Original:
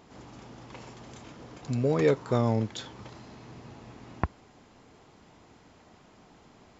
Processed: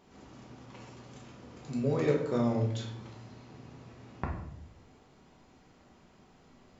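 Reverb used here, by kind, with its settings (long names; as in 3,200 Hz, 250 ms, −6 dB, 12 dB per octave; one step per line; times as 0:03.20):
rectangular room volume 150 cubic metres, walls mixed, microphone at 1.1 metres
level −8 dB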